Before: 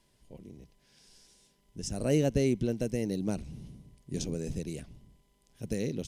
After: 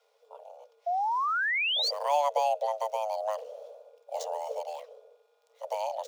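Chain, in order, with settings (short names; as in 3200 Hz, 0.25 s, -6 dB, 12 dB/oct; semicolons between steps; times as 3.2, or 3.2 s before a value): median filter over 5 samples; painted sound rise, 0.86–1.91, 250–4400 Hz -28 dBFS; frequency shift +430 Hz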